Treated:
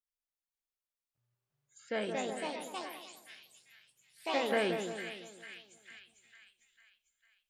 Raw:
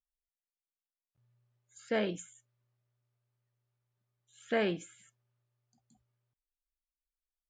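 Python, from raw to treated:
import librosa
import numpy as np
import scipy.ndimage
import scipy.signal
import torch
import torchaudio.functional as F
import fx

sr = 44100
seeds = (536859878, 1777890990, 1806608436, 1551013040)

y = fx.low_shelf(x, sr, hz=280.0, db=-7.0)
y = fx.echo_split(y, sr, split_hz=1500.0, low_ms=171, high_ms=450, feedback_pct=52, wet_db=-6.5)
y = fx.echo_pitch(y, sr, ms=534, semitones=3, count=3, db_per_echo=-3.0)
y = fx.rider(y, sr, range_db=4, speed_s=2.0)
y = y * 10.0 ** (-1.5 / 20.0)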